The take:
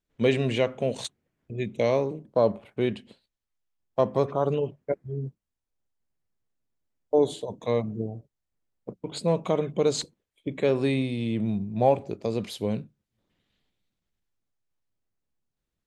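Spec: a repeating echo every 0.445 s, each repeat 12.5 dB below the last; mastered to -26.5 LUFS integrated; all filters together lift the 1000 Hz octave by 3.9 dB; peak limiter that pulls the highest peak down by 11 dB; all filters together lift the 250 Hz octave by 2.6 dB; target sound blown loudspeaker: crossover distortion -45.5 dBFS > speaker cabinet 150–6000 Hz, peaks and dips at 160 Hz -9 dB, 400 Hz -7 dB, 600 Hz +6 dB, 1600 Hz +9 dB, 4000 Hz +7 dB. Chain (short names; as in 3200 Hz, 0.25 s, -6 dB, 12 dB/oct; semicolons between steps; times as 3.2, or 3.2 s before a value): bell 250 Hz +5.5 dB; bell 1000 Hz +3 dB; limiter -18 dBFS; feedback echo 0.445 s, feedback 24%, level -12.5 dB; crossover distortion -45.5 dBFS; speaker cabinet 150–6000 Hz, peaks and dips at 160 Hz -9 dB, 400 Hz -7 dB, 600 Hz +6 dB, 1600 Hz +9 dB, 4000 Hz +7 dB; gain +4.5 dB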